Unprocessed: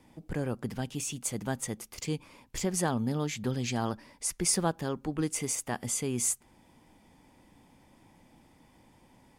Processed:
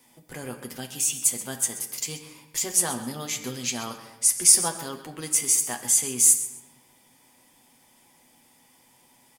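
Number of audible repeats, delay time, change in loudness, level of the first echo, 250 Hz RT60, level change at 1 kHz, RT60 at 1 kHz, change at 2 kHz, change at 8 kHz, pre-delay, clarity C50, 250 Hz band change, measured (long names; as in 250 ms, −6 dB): 2, 131 ms, +10.0 dB, −14.5 dB, 1.7 s, +0.5 dB, 1.1 s, +3.0 dB, +12.5 dB, 7 ms, 9.0 dB, −4.5 dB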